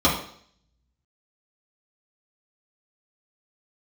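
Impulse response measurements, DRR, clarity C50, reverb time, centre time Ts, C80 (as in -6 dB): -6.5 dB, 6.0 dB, 0.60 s, 33 ms, 9.5 dB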